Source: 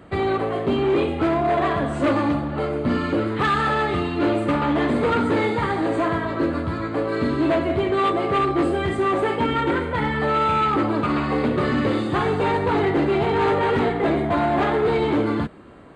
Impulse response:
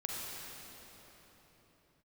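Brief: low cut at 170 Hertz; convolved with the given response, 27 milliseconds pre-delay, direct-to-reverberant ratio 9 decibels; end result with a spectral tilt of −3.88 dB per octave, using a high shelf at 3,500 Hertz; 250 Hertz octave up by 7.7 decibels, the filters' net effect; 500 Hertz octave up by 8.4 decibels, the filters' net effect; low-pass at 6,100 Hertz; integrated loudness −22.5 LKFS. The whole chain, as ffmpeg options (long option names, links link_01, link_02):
-filter_complex "[0:a]highpass=170,lowpass=6100,equalizer=frequency=250:width_type=o:gain=7.5,equalizer=frequency=500:width_type=o:gain=8.5,highshelf=frequency=3500:gain=-7.5,asplit=2[link_01][link_02];[1:a]atrim=start_sample=2205,adelay=27[link_03];[link_02][link_03]afir=irnorm=-1:irlink=0,volume=-11.5dB[link_04];[link_01][link_04]amix=inputs=2:normalize=0,volume=-8dB"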